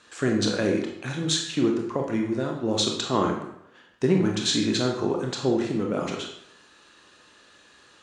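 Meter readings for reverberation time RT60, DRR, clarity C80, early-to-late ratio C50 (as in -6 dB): 0.75 s, 1.0 dB, 8.0 dB, 4.5 dB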